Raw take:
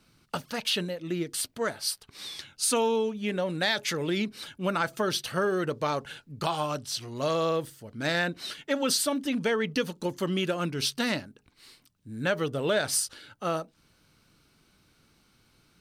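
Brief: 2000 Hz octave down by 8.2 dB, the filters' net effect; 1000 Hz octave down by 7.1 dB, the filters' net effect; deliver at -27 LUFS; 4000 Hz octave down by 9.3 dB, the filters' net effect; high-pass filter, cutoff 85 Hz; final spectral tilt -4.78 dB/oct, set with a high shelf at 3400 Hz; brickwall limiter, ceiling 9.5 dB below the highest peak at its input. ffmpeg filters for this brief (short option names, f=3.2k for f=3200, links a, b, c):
-af "highpass=85,equalizer=f=1k:t=o:g=-7,equalizer=f=2k:t=o:g=-5,highshelf=f=3.4k:g=-7.5,equalizer=f=4k:t=o:g=-4.5,volume=10dB,alimiter=limit=-17.5dB:level=0:latency=1"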